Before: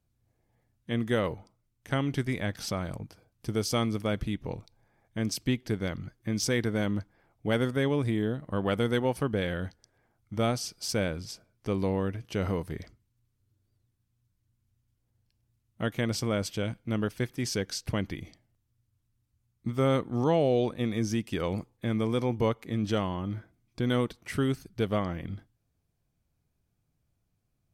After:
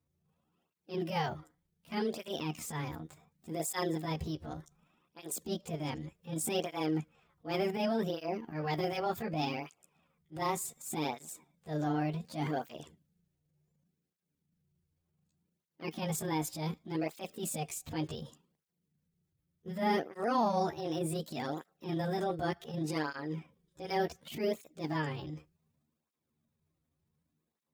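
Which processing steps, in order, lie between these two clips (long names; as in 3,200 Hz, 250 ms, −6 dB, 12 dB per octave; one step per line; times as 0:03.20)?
pitch shift by two crossfaded delay taps +7.5 semitones
transient designer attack −11 dB, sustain +2 dB
through-zero flanger with one copy inverted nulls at 0.67 Hz, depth 5.2 ms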